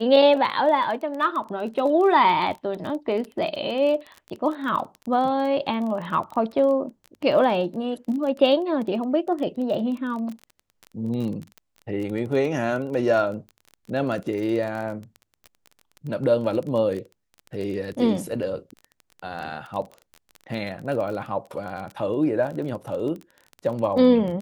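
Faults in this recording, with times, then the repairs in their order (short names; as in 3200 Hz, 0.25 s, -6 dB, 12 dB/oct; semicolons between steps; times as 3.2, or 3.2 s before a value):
crackle 21/s -30 dBFS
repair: de-click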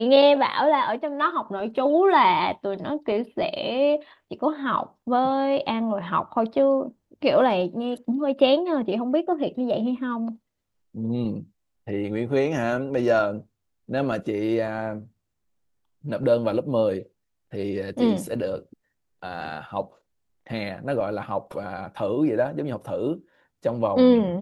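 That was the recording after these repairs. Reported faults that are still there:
none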